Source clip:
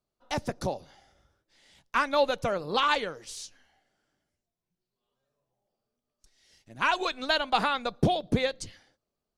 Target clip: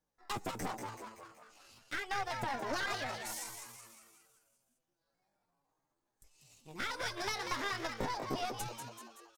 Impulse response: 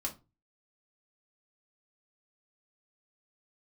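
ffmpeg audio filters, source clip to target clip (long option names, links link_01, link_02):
-filter_complex "[0:a]acompressor=threshold=-31dB:ratio=6,flanger=delay=8.6:depth=3.3:regen=-23:speed=1.4:shape=triangular,aeval=exprs='clip(val(0),-1,0.0075)':channel_layout=same,asplit=8[link_01][link_02][link_03][link_04][link_05][link_06][link_07][link_08];[link_02]adelay=189,afreqshift=80,volume=-6dB[link_09];[link_03]adelay=378,afreqshift=160,volume=-11.4dB[link_10];[link_04]adelay=567,afreqshift=240,volume=-16.7dB[link_11];[link_05]adelay=756,afreqshift=320,volume=-22.1dB[link_12];[link_06]adelay=945,afreqshift=400,volume=-27.4dB[link_13];[link_07]adelay=1134,afreqshift=480,volume=-32.8dB[link_14];[link_08]adelay=1323,afreqshift=560,volume=-38.1dB[link_15];[link_01][link_09][link_10][link_11][link_12][link_13][link_14][link_15]amix=inputs=8:normalize=0,asetrate=60591,aresample=44100,atempo=0.727827,volume=2.5dB"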